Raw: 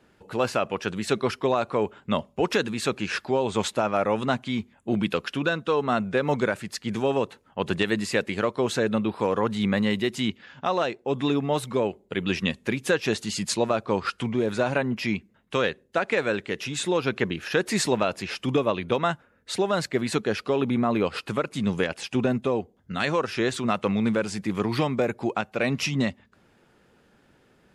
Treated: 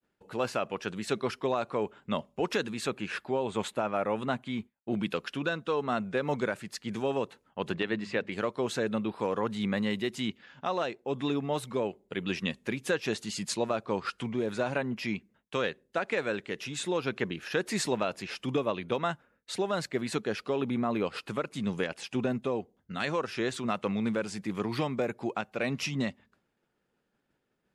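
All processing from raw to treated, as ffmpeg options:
-filter_complex "[0:a]asettb=1/sr,asplit=3[a][b][c];[a]atrim=end=2.874[d];[b]atrim=start=2.87:end=4.93,asetpts=PTS-STARTPTS,afade=t=in:d=0.004:c=qsin,afade=t=out:st=2.056:d=0.004:c=qsin,agate=range=-33dB:threshold=-44dB:ratio=3:release=100:detection=peak,equalizer=f=5.5k:w=1.7:g=-8[e];[c]atrim=start=4.926[f];[d][e]acrossfade=d=0.004:c1=hsin:c2=qsin[g];[g][f]acrossfade=d=0.004:c1=qsin:c2=hsin,asettb=1/sr,asplit=3[h][i][j];[h]atrim=end=7.724[k];[i]atrim=start=7.72:end=8.32,asetpts=PTS-STARTPTS,afade=t=in:d=0.004:c=qsin,afade=t=out:st=0.596:d=0.004:c=qsin,lowpass=3.5k,bandreject=f=50:t=h:w=6,bandreject=f=100:t=h:w=6,bandreject=f=150:t=h:w=6,bandreject=f=200:t=h:w=6,bandreject=f=250:t=h:w=6[l];[j]atrim=start=8.316[m];[k][l]acrossfade=d=0.004:c1=hsin:c2=qsin[n];[n][m]acrossfade=d=0.004:c1=qsin:c2=hsin,agate=range=-33dB:threshold=-51dB:ratio=3:detection=peak,equalizer=f=83:t=o:w=0.61:g=-6,volume=-6dB"

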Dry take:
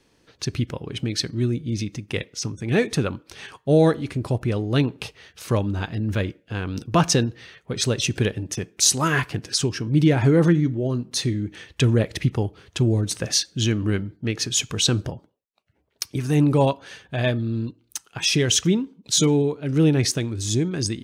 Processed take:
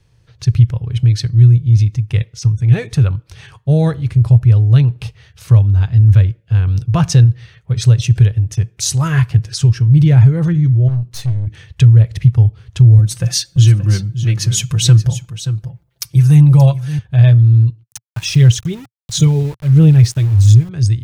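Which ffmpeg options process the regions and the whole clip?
-filter_complex "[0:a]asettb=1/sr,asplit=3[a][b][c];[a]atrim=end=10.884[d];[b]atrim=start=10.88:end=11.47,asetpts=PTS-STARTPTS,afade=t=in:d=0.004:c=qsin,afade=t=out:st=0.586:d=0.004:c=qsin,aeval=exprs='(tanh(20*val(0)+0.7)-tanh(0.7))/20':c=same,bass=f=250:g=-3,treble=f=4k:g=1,asplit=2[e][f];[f]adelay=23,volume=-14dB[g];[e][g]amix=inputs=2:normalize=0,atrim=end_sample=26019[h];[c]atrim=start=11.466[i];[d][h]acrossfade=d=0.004:c1=hsin:c2=qsin[j];[j][i]acrossfade=d=0.004:c1=qsin:c2=hsin,asettb=1/sr,asplit=3[k][l][m];[k]atrim=end=12.984[n];[l]atrim=start=12.98:end=16.99,asetpts=PTS-STARTPTS,afade=t=in:d=0.004:c=qsin,afade=t=out:st=4.006:d=0.004:c=qsin,highshelf=f=9k:g=10,aecho=1:1:5.8:0.79,atrim=end_sample=176841,aecho=1:1:578:0.251,atrim=end_sample=176841[o];[m]atrim=start=16.986[p];[n][o]acrossfade=d=0.004:c1=hsin:c2=qsin[q];[q][p]acrossfade=d=0.004:c1=qsin:c2=hsin,asettb=1/sr,asplit=3[r][s][t];[r]atrim=end=17.834[u];[s]atrim=start=17.83:end=20.69,asetpts=PTS-STARTPTS,afade=t=in:d=0.004:c=qsin,afade=t=out:st=2.856:d=0.004:c=qsin,aphaser=in_gain=1:out_gain=1:delay=3.3:decay=0.39:speed=1.5:type=sinusoidal,aeval=exprs='val(0)*gte(abs(val(0)),0.0251)':c=same[v];[t]atrim=start=20.686[w];[u][v]acrossfade=d=0.004:c1=hsin:c2=qsin[x];[x][w]acrossfade=d=0.004:c1=qsin:c2=hsin,lowshelf=f=170:t=q:w=3:g=13,alimiter=limit=0dB:level=0:latency=1:release=459,volume=-1dB"

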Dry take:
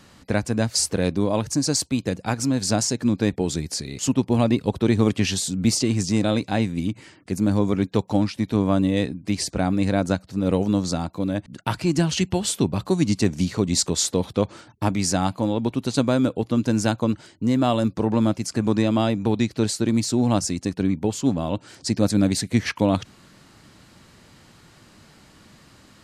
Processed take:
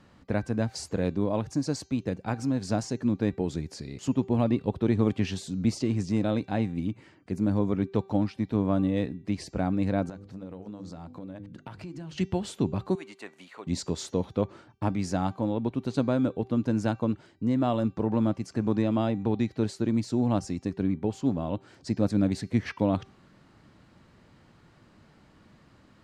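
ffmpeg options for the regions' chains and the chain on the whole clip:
-filter_complex "[0:a]asettb=1/sr,asplit=3[a][b][c];[a]atrim=end=10.094[d];[b]atrim=start=10.09:end=12.18,asetpts=PTS-STARTPTS,afade=t=in:d=0.004:c=qsin,afade=t=out:st=2.086:d=0.004:c=qsin,bandreject=f=50:t=h:w=6,bandreject=f=100:t=h:w=6,bandreject=f=150:t=h:w=6,bandreject=f=200:t=h:w=6,bandreject=f=250:t=h:w=6,bandreject=f=300:t=h:w=6,bandreject=f=350:t=h:w=6,bandreject=f=400:t=h:w=6,bandreject=f=450:t=h:w=6,bandreject=f=500:t=h:w=6,acompressor=threshold=-30dB:ratio=16:attack=3.2:release=140:knee=1:detection=peak[e];[c]atrim=start=12.176[f];[d][e]acrossfade=d=0.004:c1=hsin:c2=qsin[g];[g][f]acrossfade=d=0.004:c1=qsin:c2=hsin,asettb=1/sr,asplit=3[h][i][j];[h]atrim=end=12.954[k];[i]atrim=start=12.95:end=13.67,asetpts=PTS-STARTPTS,afade=t=in:d=0.004:c=qsin,afade=t=out:st=0.716:d=0.004:c=qsin,highpass=930,equalizer=f=5.4k:w=1.8:g=-13[l];[j]atrim=start=13.666[m];[k][l]acrossfade=d=0.004:c1=hsin:c2=qsin[n];[n][m]acrossfade=d=0.004:c1=qsin:c2=hsin,lowpass=f=1.6k:p=1,bandreject=f=389.1:t=h:w=4,bandreject=f=778.2:t=h:w=4,bandreject=f=1.1673k:t=h:w=4,bandreject=f=1.5564k:t=h:w=4,bandreject=f=1.9455k:t=h:w=4,bandreject=f=2.3346k:t=h:w=4,bandreject=f=2.7237k:t=h:w=4,bandreject=f=3.1128k:t=h:w=4,bandreject=f=3.5019k:t=h:w=4,bandreject=f=3.891k:t=h:w=4,bandreject=f=4.2801k:t=h:w=4,bandreject=f=4.6692k:t=h:w=4,bandreject=f=5.0583k:t=h:w=4,bandreject=f=5.4474k:t=h:w=4,bandreject=f=5.8365k:t=h:w=4,bandreject=f=6.2256k:t=h:w=4,bandreject=f=6.6147k:t=h:w=4,bandreject=f=7.0038k:t=h:w=4,bandreject=f=7.3929k:t=h:w=4,volume=-5dB"

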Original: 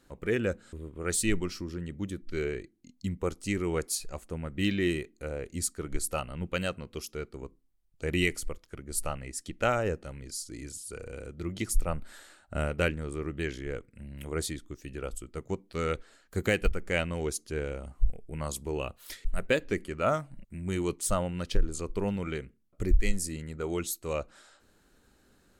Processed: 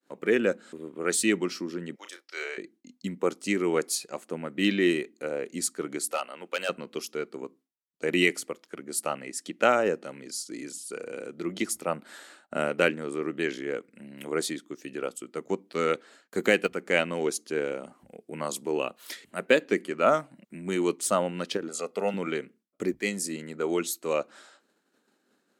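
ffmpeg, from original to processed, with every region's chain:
-filter_complex "[0:a]asettb=1/sr,asplit=3[a][b][c];[a]atrim=end=1.954[d];[b]atrim=start=1.95:end=2.58,asetpts=PTS-STARTPTS,afade=t=in:d=0.004:c=qsin,afade=t=out:st=0.626:d=0.004:c=qsin,highpass=f=630:w=0.5412,highpass=f=630:w=1.3066,equalizer=f=5.3k:t=o:w=0.24:g=11.5,asplit=2[e][f];[f]adelay=34,volume=-7.5dB[g];[e][g]amix=inputs=2:normalize=0,atrim=end_sample=27783[h];[c]atrim=start=2.576[i];[d][h]acrossfade=d=0.004:c1=hsin:c2=qsin[j];[j][i]acrossfade=d=0.004:c1=qsin:c2=hsin,asettb=1/sr,asplit=3[k][l][m];[k]atrim=end=6.114[n];[l]atrim=start=6.11:end=6.69,asetpts=PTS-STARTPTS,afade=t=in:d=0.004:c=qsin,afade=t=out:st=0.576:d=0.004:c=qsin,highpass=510,volume=26.5dB,asoftclip=hard,volume=-26.5dB[o];[m]atrim=start=6.686[p];[n][o]acrossfade=d=0.004:c1=hsin:c2=qsin[q];[q][p]acrossfade=d=0.004:c1=qsin:c2=hsin,asettb=1/sr,asplit=3[r][s][t];[r]atrim=end=21.684[u];[s]atrim=start=21.68:end=22.14,asetpts=PTS-STARTPTS,afade=t=in:d=0.004:c=qsin,afade=t=out:st=0.456:d=0.004:c=qsin,highpass=270,aecho=1:1:1.5:0.81,atrim=end_sample=20286[v];[t]atrim=start=22.136[w];[u][v]acrossfade=d=0.004:c1=hsin:c2=qsin[x];[x][w]acrossfade=d=0.004:c1=qsin:c2=hsin,agate=range=-33dB:threshold=-55dB:ratio=3:detection=peak,highpass=f=210:w=0.5412,highpass=f=210:w=1.3066,highshelf=f=7.5k:g=-6,volume=5.5dB"

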